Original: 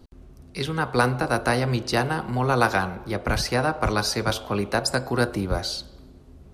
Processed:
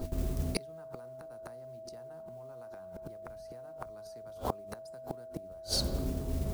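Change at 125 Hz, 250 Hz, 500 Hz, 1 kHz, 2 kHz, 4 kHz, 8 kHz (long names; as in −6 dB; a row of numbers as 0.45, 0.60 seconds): −13.0, −14.5, −14.5, −20.5, −27.5, −11.0, −11.0 decibels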